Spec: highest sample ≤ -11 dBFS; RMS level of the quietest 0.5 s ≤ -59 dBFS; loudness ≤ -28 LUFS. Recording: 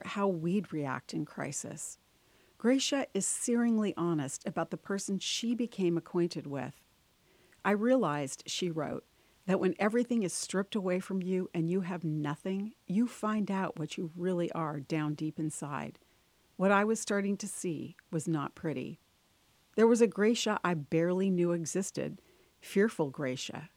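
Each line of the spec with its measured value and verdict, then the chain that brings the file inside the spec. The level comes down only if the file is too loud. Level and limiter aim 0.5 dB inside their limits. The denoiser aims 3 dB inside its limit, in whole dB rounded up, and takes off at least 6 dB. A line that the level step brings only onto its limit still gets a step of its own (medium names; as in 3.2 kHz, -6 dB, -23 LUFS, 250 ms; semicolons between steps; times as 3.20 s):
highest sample -12.5 dBFS: pass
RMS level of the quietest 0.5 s -69 dBFS: pass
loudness -32.5 LUFS: pass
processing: none needed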